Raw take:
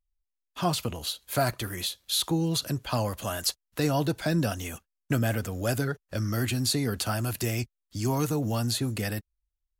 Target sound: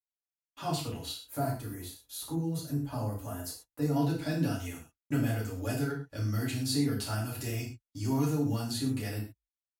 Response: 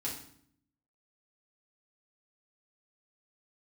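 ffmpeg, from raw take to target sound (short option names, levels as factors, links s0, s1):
-filter_complex "[0:a]agate=range=0.0282:threshold=0.00251:ratio=16:detection=peak,asettb=1/sr,asplit=3[s0][s1][s2];[s0]atrim=end=1.244[s3];[s1]atrim=start=1.24:end=3.96,asetpts=PTS-STARTPTS,afade=t=in:d=0.004:c=qsin,afade=t=out:st=2.716:d=0.004:c=qsin,equalizer=f=3200:t=o:w=2:g=-13[s4];[s2]atrim=start=3.956[s5];[s3][s4]acrossfade=d=0.004:c1=hsin:c2=qsin[s6];[s6][s5]acrossfade=d=0.004:c1=qsin:c2=hsin[s7];[1:a]atrim=start_sample=2205,atrim=end_sample=6174[s8];[s7][s8]afir=irnorm=-1:irlink=0,volume=0.398"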